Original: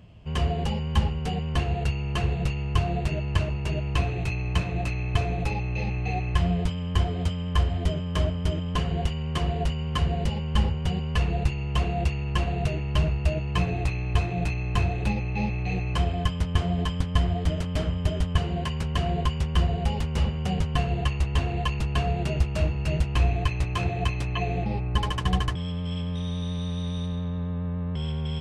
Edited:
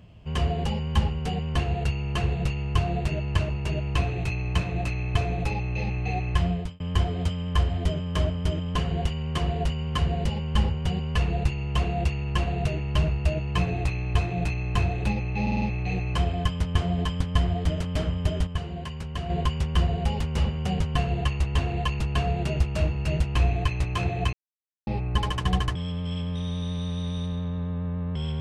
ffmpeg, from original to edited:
-filter_complex "[0:a]asplit=10[s0][s1][s2][s3][s4][s5][s6][s7][s8][s9];[s0]atrim=end=6.8,asetpts=PTS-STARTPTS,afade=t=out:st=6.33:d=0.47:c=qsin[s10];[s1]atrim=start=6.8:end=15.472,asetpts=PTS-STARTPTS,afade=t=in:d=0.004:c=hsin[s11];[s2]atrim=start=15.418:end=15.472[s12];[s3]atrim=start=15.418:end=15.472[s13];[s4]atrim=start=15.418:end=15.472[s14];[s5]atrim=start=15.418:end=18.272[s15];[s6]atrim=start=18.268:end=19.102,asetpts=PTS-STARTPTS,volume=0.501[s16];[s7]atrim=start=19.098:end=24.13,asetpts=PTS-STARTPTS,afade=t=out:st=5.028:d=0.004:c=hsin[s17];[s8]atrim=start=24.13:end=24.67,asetpts=PTS-STARTPTS,volume=0[s18];[s9]atrim=start=24.67,asetpts=PTS-STARTPTS,afade=t=in:d=0.004:c=hsin[s19];[s10][s11]concat=n=2:v=0:a=1[s20];[s20][s12]acrossfade=d=0.004:c1=hsin:c2=hsin[s21];[s21][s13]acrossfade=d=0.004:c1=hsin:c2=hsin[s22];[s22][s14]acrossfade=d=0.004:c1=hsin:c2=hsin[s23];[s23][s15]acrossfade=d=0.004:c1=hsin:c2=hsin[s24];[s24][s16]acrossfade=d=0.004:c1=hsin:c2=hsin[s25];[s17][s18][s19]concat=n=3:v=0:a=1[s26];[s25][s26]acrossfade=d=0.004:c1=hsin:c2=hsin"

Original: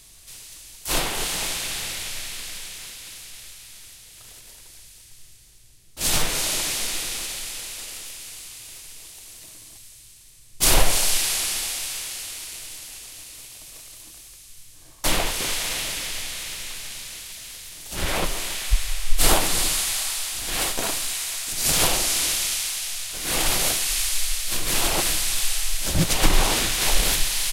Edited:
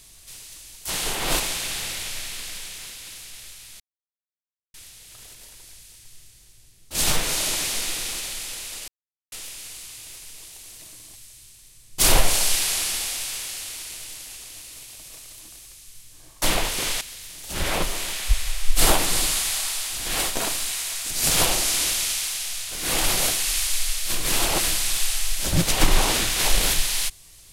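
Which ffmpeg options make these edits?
-filter_complex "[0:a]asplit=6[s0][s1][s2][s3][s4][s5];[s0]atrim=end=0.902[s6];[s1]atrim=start=0.898:end=1.402,asetpts=PTS-STARTPTS,areverse[s7];[s2]atrim=start=1.398:end=3.8,asetpts=PTS-STARTPTS,afade=t=out:st=2.398:d=0.004:c=hsin,apad=pad_dur=0.94[s8];[s3]atrim=start=3.8:end=7.94,asetpts=PTS-STARTPTS,afade=t=in:d=0.004:c=hsin,afade=t=out:st=4.136:d=0.004:c=hsin,apad=pad_dur=0.44[s9];[s4]atrim=start=7.94:end=15.632,asetpts=PTS-STARTPTS,afade=t=in:d=0.004:c=hsin[s10];[s5]atrim=start=17.428[s11];[s6][s7]acrossfade=d=0.004:c1=hsin:c2=hsin[s12];[s8][s9][s10]concat=n=3:v=0:a=1[s13];[s12][s13]acrossfade=d=0.004:c1=hsin:c2=hsin[s14];[s14][s11]acrossfade=d=0.004:c1=hsin:c2=hsin"

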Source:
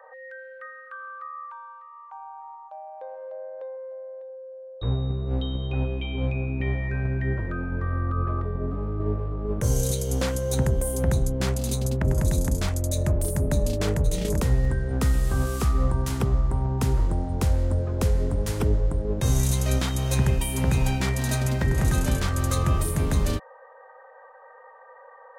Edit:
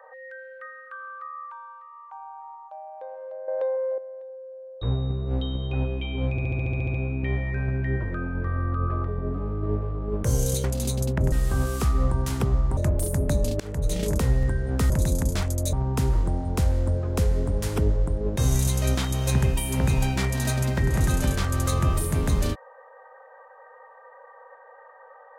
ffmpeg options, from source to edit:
-filter_complex "[0:a]asplit=18[s0][s1][s2][s3][s4][s5][s6][s7][s8][s9][s10][s11][s12][s13][s14][s15][s16][s17];[s0]atrim=end=3.482[s18];[s1]atrim=start=3.478:end=3.982,asetpts=PTS-STARTPTS,volume=3.35[s19];[s2]atrim=start=3.978:end=6.382[s20];[s3]atrim=start=6.308:end=6.382[s21];[s4]atrim=start=6.308:end=6.382[s22];[s5]atrim=start=6.308:end=6.382[s23];[s6]atrim=start=6.308:end=6.382[s24];[s7]atrim=start=6.308:end=6.382[s25];[s8]atrim=start=6.308:end=6.382[s26];[s9]atrim=start=6.308:end=6.382[s27];[s10]atrim=start=6.308:end=6.382[s28];[s11]atrim=start=6.308:end=10.012[s29];[s12]atrim=start=11.478:end=12.162[s30];[s13]atrim=start=15.118:end=16.572[s31];[s14]atrim=start=12.988:end=13.82,asetpts=PTS-STARTPTS,afade=t=out:st=0.828:d=0.004:c=hsin:silence=0.0630957[s32];[s15]atrim=start=13.82:end=15.122,asetpts=PTS-STARTPTS,afade=t=in:d=0.32:silence=0.0630957[s33];[s16]atrim=start=12.158:end=12.992[s34];[s17]atrim=start=16.568[s35];[s18][s19]acrossfade=d=0.004:c1=hsin:c2=hsin[s36];[s36][s20]acrossfade=d=0.004:c1=hsin:c2=hsin[s37];[s37][s21]acrossfade=d=0.004:c1=hsin:c2=hsin[s38];[s38][s22]acrossfade=d=0.004:c1=hsin:c2=hsin[s39];[s39][s23]acrossfade=d=0.004:c1=hsin:c2=hsin[s40];[s40][s24]acrossfade=d=0.004:c1=hsin:c2=hsin[s41];[s41][s25]acrossfade=d=0.004:c1=hsin:c2=hsin[s42];[s42][s26]acrossfade=d=0.004:c1=hsin:c2=hsin[s43];[s43][s27]acrossfade=d=0.004:c1=hsin:c2=hsin[s44];[s44][s28]acrossfade=d=0.004:c1=hsin:c2=hsin[s45];[s45][s29]acrossfade=d=0.004:c1=hsin:c2=hsin[s46];[s46][s30]acrossfade=d=0.004:c1=hsin:c2=hsin[s47];[s47][s31]acrossfade=d=0.004:c1=hsin:c2=hsin[s48];[s32][s33]concat=n=2:v=0:a=1[s49];[s48][s49]acrossfade=d=0.004:c1=hsin:c2=hsin[s50];[s50][s34]acrossfade=d=0.004:c1=hsin:c2=hsin[s51];[s51][s35]acrossfade=d=0.004:c1=hsin:c2=hsin"

